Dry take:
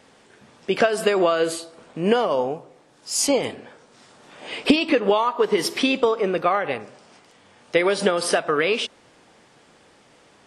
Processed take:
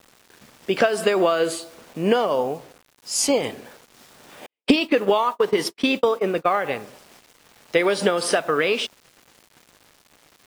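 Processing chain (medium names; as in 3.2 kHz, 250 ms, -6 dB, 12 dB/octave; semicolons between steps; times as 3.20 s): bit crusher 8-bit; 4.46–6.53 s: gate -23 dBFS, range -59 dB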